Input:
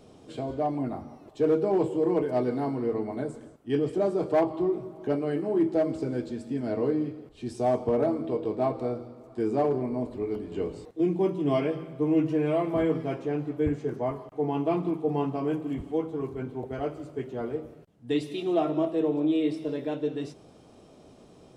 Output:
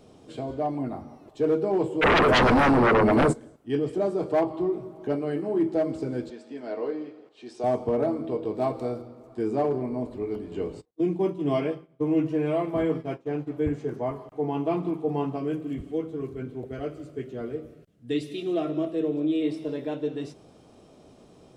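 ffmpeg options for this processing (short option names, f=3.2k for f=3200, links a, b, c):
-filter_complex "[0:a]asplit=3[a][b][c];[a]afade=t=out:st=2.01:d=0.02[d];[b]aeval=exprs='0.168*sin(PI/2*5.01*val(0)/0.168)':c=same,afade=t=in:st=2.01:d=0.02,afade=t=out:st=3.32:d=0.02[e];[c]afade=t=in:st=3.32:d=0.02[f];[d][e][f]amix=inputs=3:normalize=0,asettb=1/sr,asplit=3[g][h][i];[g]atrim=end=6.304[j];[h]atrim=start=6.3:end=7.64,asetpts=PTS-STARTPTS,afade=t=in:d=0.004:c=qsin,afade=t=out:st=1.336:d=0.004:c=qsin,highpass=430,lowpass=5.9k[k];[i]atrim=start=7.636[l];[j][k]acrossfade=d=0.004:c1=hsin:c2=qsin[m];[m][l]acrossfade=d=0.004:c1=qsin:c2=hsin,asettb=1/sr,asplit=3[n][o][p];[n]atrim=end=8.554[q];[o]atrim=start=8.55:end=9.02,asetpts=PTS-STARTPTS,afade=t=in:d=0.004:c=qsin,afade=t=out:st=0.466:d=0.004:c=qsin,highshelf=f=4.9k:g=10[r];[p]atrim=start=9.016[s];[q][r]acrossfade=d=0.004:c1=hsin:c2=qsin[t];[t][s]acrossfade=d=0.004:c1=qsin:c2=hsin,asplit=3[u][v][w];[u]afade=t=out:st=10.8:d=0.02[x];[v]agate=range=-33dB:threshold=-29dB:ratio=3:release=100:detection=peak,afade=t=in:st=10.8:d=0.02,afade=t=out:st=13.46:d=0.02[y];[w]afade=t=in:st=13.46:d=0.02[z];[x][y][z]amix=inputs=3:normalize=0,asettb=1/sr,asplit=3[aa][ab][ac];[aa]atrim=end=15.384[ad];[ab]atrim=start=15.38:end=19.42,asetpts=PTS-STARTPTS,afade=t=in:d=0.004:c=qsin,afade=t=out:st=4.036:d=0.004:c=qsin,equalizer=f=880:w=2.6:g=-12.5[ae];[ac]atrim=start=19.416[af];[ad][ae]acrossfade=d=0.004:c1=hsin:c2=qsin[ag];[ag][af]acrossfade=d=0.004:c1=qsin:c2=hsin"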